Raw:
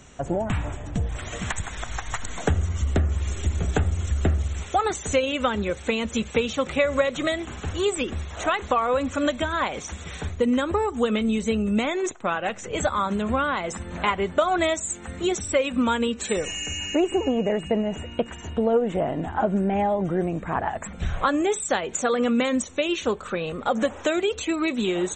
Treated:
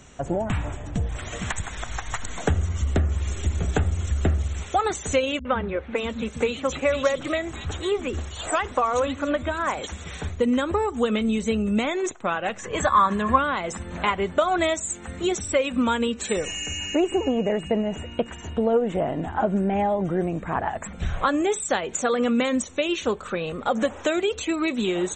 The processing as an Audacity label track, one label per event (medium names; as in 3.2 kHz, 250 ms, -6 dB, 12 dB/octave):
5.390000	9.870000	three bands offset in time lows, mids, highs 60/560 ms, splits 210/2800 Hz
12.590000	13.380000	small resonant body resonances 1.1/1.7 kHz, height 16 dB, ringing for 35 ms